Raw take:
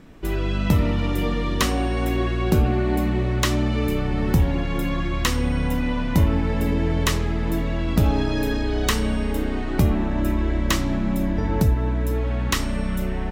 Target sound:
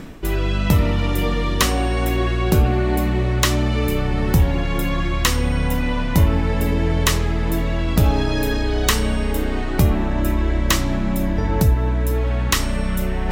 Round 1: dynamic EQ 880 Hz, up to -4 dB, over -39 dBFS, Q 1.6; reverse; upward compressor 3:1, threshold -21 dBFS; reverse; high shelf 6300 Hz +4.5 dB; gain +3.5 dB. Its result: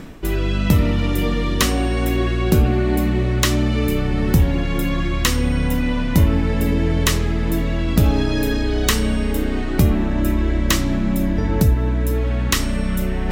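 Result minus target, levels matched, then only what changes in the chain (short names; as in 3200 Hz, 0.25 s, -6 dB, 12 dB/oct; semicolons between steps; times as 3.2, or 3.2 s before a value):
1000 Hz band -3.5 dB
change: dynamic EQ 250 Hz, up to -4 dB, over -39 dBFS, Q 1.6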